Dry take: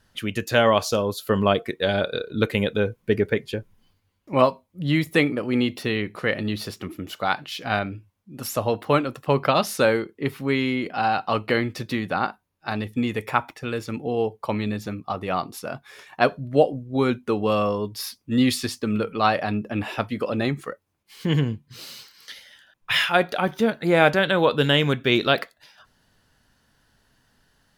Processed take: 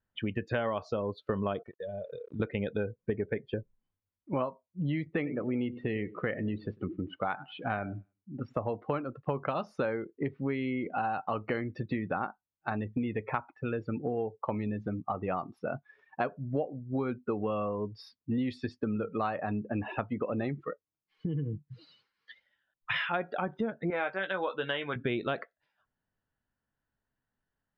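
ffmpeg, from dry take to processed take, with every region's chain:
-filter_complex "[0:a]asettb=1/sr,asplit=3[a][b][c];[a]atrim=end=1.634[d];[b]atrim=start=1.63:end=2.4,asetpts=PTS-STARTPTS,afade=t=in:d=0.004:c=qsin,afade=t=out:st=0.766:d=0.004:c=qsin,aecho=1:1:1.7:0.42,atrim=end_sample=33957,aeval=exprs='val(0)*gte(abs(val(0)),0.0168)':c=same,acompressor=threshold=-35dB:ratio=6:attack=3.2:release=140:knee=1:detection=peak[e];[c]atrim=start=2.396[f];[d][e]acrossfade=d=0.004:c1=hsin:c2=qsin[g];[g][f]acrossfade=d=0.004:c1=qsin:c2=hsin,asettb=1/sr,asplit=3[h][i][j];[h]atrim=end=5.074[k];[i]atrim=start=5.07:end=8.54,asetpts=PTS-STARTPTS,afade=t=in:d=0.004:c=qsin,afade=t=out:st=3.466:d=0.004:c=qsin,lowpass=3.5k,aecho=1:1:98|196|294:0.141|0.0438|0.0136,atrim=end_sample=153027[l];[j]atrim=start=8.536[m];[k][l]acrossfade=d=0.004:c1=hsin:c2=qsin[n];[n][m]acrossfade=d=0.004:c1=qsin:c2=hsin,asettb=1/sr,asplit=3[o][p][q];[o]atrim=end=20.644[r];[p]atrim=start=20.64:end=21.95,asetpts=PTS-STARTPTS,afade=t=in:d=0.004:c=qsin,afade=t=out:st=1.306:d=0.004:c=qsin,aecho=1:1:6.4:0.52,atrim=end_sample=57771,acompressor=threshold=-27dB:ratio=4:attack=3.2:release=140:knee=1:detection=peak[s];[q]atrim=start=21.946[t];[r][s]acrossfade=d=0.004:c1=hsin:c2=qsin[u];[u][t]acrossfade=d=0.004:c1=qsin:c2=hsin,asettb=1/sr,asplit=3[v][w][x];[v]atrim=end=23.904[y];[w]atrim=start=23.9:end=24.96,asetpts=PTS-STARTPTS,afade=t=in:d=0.004:c=qsin,afade=t=out:st=1.056:d=0.004:c=qsin,highpass=f=860:p=1,asplit=2[z][aa];[aa]adelay=16,volume=-7dB[ab];[z][ab]amix=inputs=2:normalize=0,atrim=end_sample=46746[ac];[x]atrim=start=24.956[ad];[y][ac]acrossfade=d=0.004:c1=hsin:c2=qsin[ae];[ae][ad]acrossfade=d=0.004:c1=qsin:c2=hsin,afftdn=nr=22:nf=-33,lowpass=2.1k,acompressor=threshold=-29dB:ratio=6"

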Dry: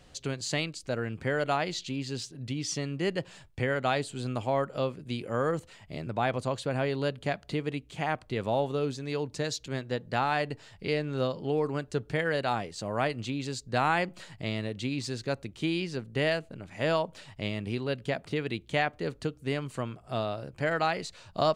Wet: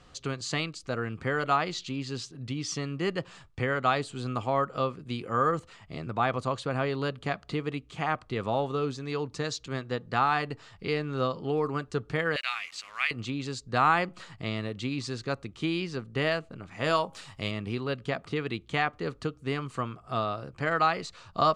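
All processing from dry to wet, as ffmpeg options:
-filter_complex "[0:a]asettb=1/sr,asplit=3[a][b][c];[a]atrim=end=12.364[d];[b]atrim=start=12.36:end=13.11,asetpts=PTS-STARTPTS,afade=t=in:d=0.004:c=qsin,afade=t=out:st=0.746:d=0.004:c=qsin,highpass=f=2.3k:t=q:w=4.1,acrusher=bits=7:mix=0:aa=0.5[e];[c]atrim=start=13.106[f];[d][e]acrossfade=d=0.004:c1=hsin:c2=qsin[g];[g][f]acrossfade=d=0.004:c1=qsin:c2=hsin,asettb=1/sr,asplit=3[h][i][j];[h]atrim=end=16.844[k];[i]atrim=start=16.84:end=17.51,asetpts=PTS-STARTPTS,afade=t=in:d=0.004:c=qsin,afade=t=out:st=0.666:d=0.004:c=qsin,aemphasis=mode=production:type=50fm,asplit=2[l][m];[m]adelay=21,volume=-13dB[n];[l][n]amix=inputs=2:normalize=0,atrim=end_sample=29547,bandreject=f=271.9:t=h:w=4,bandreject=f=543.8:t=h:w=4,bandreject=f=815.7:t=h:w=4,bandreject=f=1.0876k:t=h:w=4[o];[j]atrim=start=17.506[p];[k][o]acrossfade=d=0.004:c1=hsin:c2=qsin[q];[q][p]acrossfade=d=0.004:c1=qsin:c2=hsin,lowpass=7.8k,equalizer=f=1.2k:t=o:w=0.31:g=11,bandreject=f=590:w=12"

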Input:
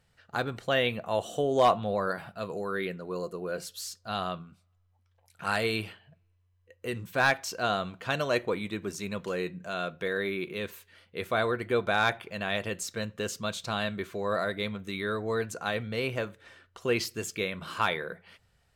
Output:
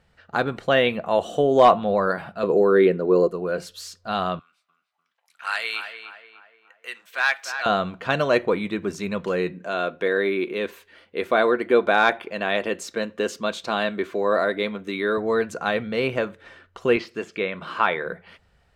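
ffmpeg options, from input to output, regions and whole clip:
-filter_complex "[0:a]asettb=1/sr,asplit=3[a][b][c];[a]atrim=end=2.434[d];[b]atrim=start=2.43:end=3.28,asetpts=PTS-STARTPTS,afade=t=in:d=0.004:c=qsin,afade=t=out:st=0.846:d=0.004:c=qsin,highpass=43,equalizer=f=380:w=1:g=11[e];[c]atrim=start=3.276[f];[d][e]acrossfade=d=0.004:c1=hsin:c2=qsin[g];[g][f]acrossfade=d=0.004:c1=qsin:c2=hsin,asettb=1/sr,asplit=3[h][i][j];[h]atrim=end=4.394[k];[i]atrim=start=4.39:end=7.66,asetpts=PTS-STARTPTS,afade=t=in:d=0.004:c=qsin,afade=t=out:st=3.266:d=0.004:c=qsin,highpass=1.5k,asplit=2[l][m];[m]adelay=296,lowpass=f=2k:p=1,volume=-7.5dB,asplit=2[n][o];[o]adelay=296,lowpass=f=2k:p=1,volume=0.49,asplit=2[p][q];[q]adelay=296,lowpass=f=2k:p=1,volume=0.49,asplit=2[r][s];[s]adelay=296,lowpass=f=2k:p=1,volume=0.49,asplit=2[t][u];[u]adelay=296,lowpass=f=2k:p=1,volume=0.49,asplit=2[v][w];[w]adelay=296,lowpass=f=2k:p=1,volume=0.49[x];[l][n][p][r][t][v][x]amix=inputs=7:normalize=0,atrim=end_sample=144207[y];[j]atrim=start=7.656[z];[k][y]acrossfade=d=0.004:c1=hsin:c2=qsin[aa];[aa][z]acrossfade=d=0.004:c1=qsin:c2=hsin,asettb=1/sr,asplit=3[ab][ac][ad];[ab]atrim=end=9.524[ae];[ac]atrim=start=9.52:end=15.18,asetpts=PTS-STARTPTS,afade=t=in:d=0.004:c=qsin,afade=t=out:st=5.656:d=0.004:c=qsin,lowshelf=f=200:t=q:w=1.5:g=-8.5,bandreject=f=1.3k:w=24[af];[ad]atrim=start=15.176[ag];[ae][af]acrossfade=d=0.004:c1=hsin:c2=qsin[ah];[ah][ag]acrossfade=d=0.004:c1=qsin:c2=hsin,asettb=1/sr,asplit=3[ai][aj][ak];[ai]atrim=end=16.964[al];[aj]atrim=start=16.96:end=18.06,asetpts=PTS-STARTPTS,afade=t=in:d=0.004:c=qsin,afade=t=out:st=1.096:d=0.004:c=qsin,highpass=f=280:p=1,highshelf=f=9.3k:g=-9.5,acrossover=split=3700[am][an];[an]acompressor=threshold=-53dB:ratio=4:attack=1:release=60[ao];[am][ao]amix=inputs=2:normalize=0[ap];[ak]atrim=start=18.056[aq];[al][ap]acrossfade=d=0.004:c1=hsin:c2=qsin[ar];[ar][aq]acrossfade=d=0.004:c1=qsin:c2=hsin,lowpass=f=2.5k:p=1,equalizer=f=110:t=o:w=0.27:g=-15,volume=8.5dB"

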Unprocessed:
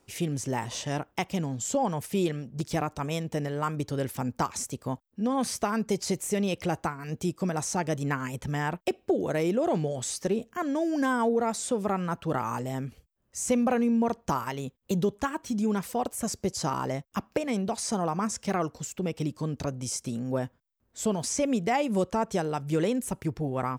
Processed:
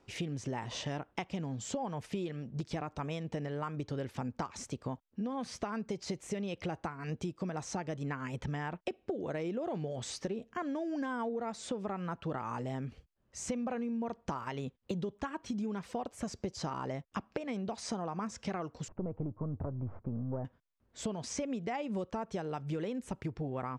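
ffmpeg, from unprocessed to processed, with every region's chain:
-filter_complex "[0:a]asettb=1/sr,asplit=3[a][b][c];[a]atrim=end=18.884[d];[b]atrim=start=18.88:end=20.45,asetpts=PTS-STARTPTS,afade=t=in:d=0.004:c=qsin,afade=t=out:st=1.566:d=0.004:c=qsin,aeval=exprs='if(lt(val(0),0),0.447*val(0),val(0))':c=same,lowpass=f=1.2k:w=0.5412,lowpass=f=1.2k:w=1.3066,equalizer=f=95:w=1.8:g=12.5[e];[c]atrim=start=20.446[f];[d][e]acrossfade=d=0.004:c1=hsin:c2=qsin[g];[g][f]acrossfade=d=0.004:c1=qsin:c2=hsin,lowpass=4.4k,acompressor=threshold=-34dB:ratio=6"

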